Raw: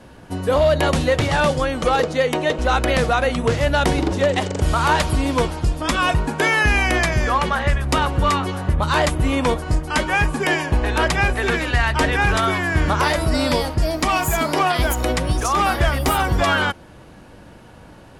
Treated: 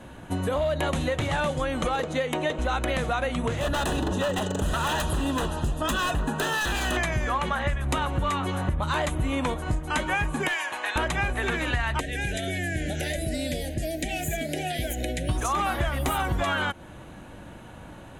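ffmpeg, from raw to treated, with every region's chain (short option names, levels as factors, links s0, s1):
-filter_complex "[0:a]asettb=1/sr,asplit=3[s0][s1][s2];[s0]atrim=end=3.604[s3];[s1]atrim=start=3.6:end=6.97,asetpts=PTS-STARTPTS,afade=t=in:d=0.004:c=qsin,afade=t=out:st=3.366:d=0.004:c=qsin,aecho=1:1:4.7:0.31,atrim=end_sample=148617,aeval=exprs='0.168*(abs(mod(val(0)/0.168+3,4)-2)-1)':c=same,asuperstop=centerf=2200:order=4:qfactor=4.1[s4];[s2]atrim=start=6.966[s5];[s3][s4]acrossfade=d=0.004:c1=hsin:c2=qsin[s6];[s6][s5]acrossfade=d=0.004:c1=qsin:c2=hsin,asettb=1/sr,asplit=3[s7][s8][s9];[s7]atrim=end=10.484[s10];[s8]atrim=start=10.48:end=10.96,asetpts=PTS-STARTPTS,afade=t=in:d=0.004:c=qsin,afade=t=out:st=0.476:d=0.004:c=qsin,highpass=1000,aeval=exprs='clip(val(0),-1,0.119)':c=same[s11];[s9]atrim=start=10.956[s12];[s10][s11]acrossfade=d=0.004:c1=hsin:c2=qsin[s13];[s13][s12]acrossfade=d=0.004:c1=qsin:c2=hsin,asettb=1/sr,asplit=3[s14][s15][s16];[s14]atrim=end=12.004[s17];[s15]atrim=start=12:end=15.29,asetpts=PTS-STARTPTS,afade=t=in:d=0.004:c=qsin,afade=t=out:st=3.286:d=0.004:c=qsin,asuperstop=centerf=1100:order=8:qfactor=1.2,acrossover=split=140|5600[s18][s19][s20];[s18]acompressor=threshold=0.0251:ratio=4[s21];[s19]acompressor=threshold=0.0355:ratio=4[s22];[s20]acompressor=threshold=0.0141:ratio=4[s23];[s21][s22][s23]amix=inputs=3:normalize=0[s24];[s16]atrim=start=15.286[s25];[s17][s24]acrossfade=d=0.004:c1=hsin:c2=qsin[s26];[s26][s25]acrossfade=d=0.004:c1=qsin:c2=hsin,acompressor=threshold=0.0708:ratio=6,superequalizer=7b=0.708:14b=0.355"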